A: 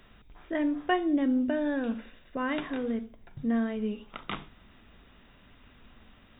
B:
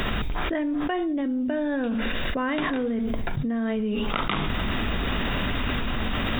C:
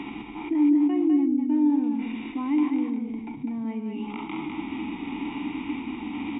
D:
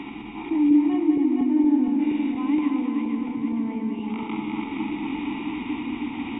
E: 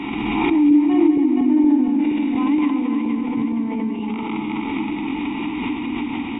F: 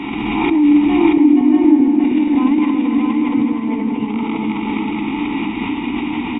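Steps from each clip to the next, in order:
fast leveller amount 100%; gain -3.5 dB
vowel filter u; echo 0.202 s -5.5 dB; harmonic-percussive split percussive -8 dB; gain +8 dB
regenerating reverse delay 0.235 s, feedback 74%, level -4 dB
backwards sustainer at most 23 dB/s; gain +3 dB
echo 0.63 s -3 dB; gain +2.5 dB

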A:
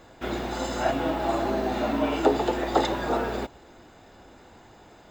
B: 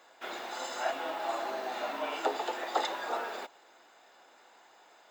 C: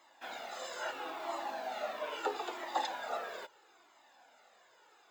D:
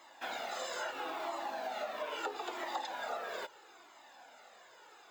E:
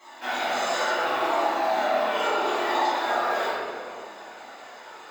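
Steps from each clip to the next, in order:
HPF 700 Hz 12 dB/oct; gain -4 dB
cascading flanger falling 0.76 Hz
compressor 6:1, threshold -42 dBFS, peak gain reduction 13.5 dB; gain +6 dB
reverb RT60 2.2 s, pre-delay 4 ms, DRR -14.5 dB

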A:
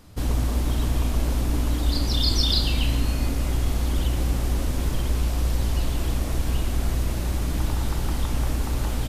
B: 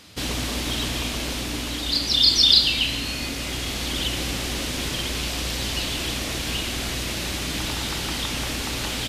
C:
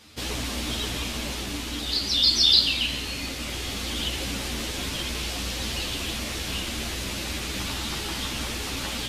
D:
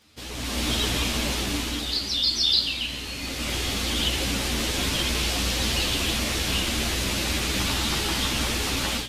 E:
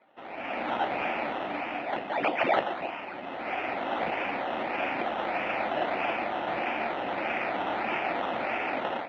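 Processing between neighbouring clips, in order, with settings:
weighting filter D; in parallel at +2 dB: vocal rider within 5 dB 2 s; on the sum: gain -8.5 dB
ensemble effect
crackle 27/s -42 dBFS; AGC gain up to 13.5 dB; gain -8 dB
decimation with a swept rate 15×, swing 60% 1.6 Hz; speaker cabinet 420–2600 Hz, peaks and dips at 440 Hz -7 dB, 730 Hz +5 dB, 1100 Hz -8 dB, 1600 Hz -5 dB, 2500 Hz +6 dB

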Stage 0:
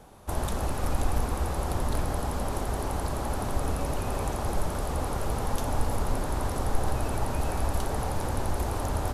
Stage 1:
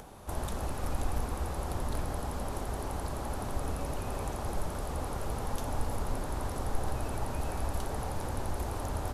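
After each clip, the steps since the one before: upward compressor, threshold -35 dBFS; gain -5.5 dB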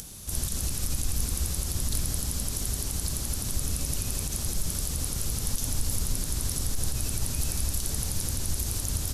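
EQ curve 170 Hz 0 dB, 830 Hz -17 dB, 5700 Hz +13 dB; limiter -22 dBFS, peak gain reduction 10.5 dB; gain +5.5 dB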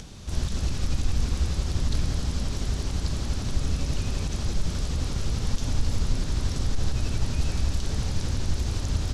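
air absorption 150 m; gain +5 dB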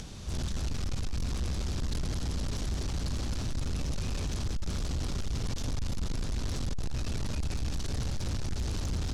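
soft clip -27.5 dBFS, distortion -8 dB

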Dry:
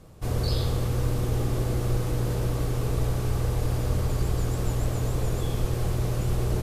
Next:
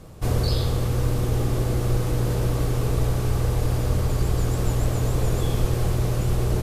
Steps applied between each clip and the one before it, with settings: vocal rider 0.5 s; gain +3.5 dB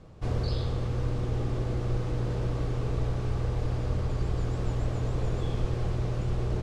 air absorption 110 m; gain -6.5 dB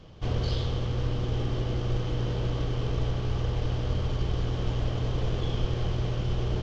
CVSD 32 kbps; bell 3100 Hz +11.5 dB 0.22 oct; gain +1 dB

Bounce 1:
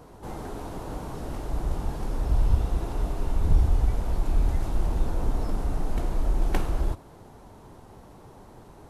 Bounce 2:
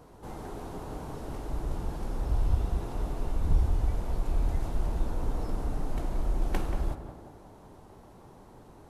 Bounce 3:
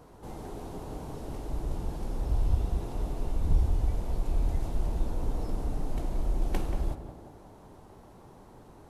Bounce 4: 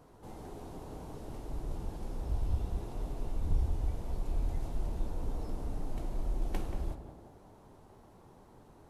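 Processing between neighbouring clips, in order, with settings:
tape echo 0.18 s, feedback 65%, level -5 dB, low-pass 1200 Hz; gain -4.5 dB
dynamic EQ 1400 Hz, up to -5 dB, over -57 dBFS, Q 1.2
flange 0.64 Hz, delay 7.2 ms, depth 6.2 ms, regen -69%; gain -1 dB

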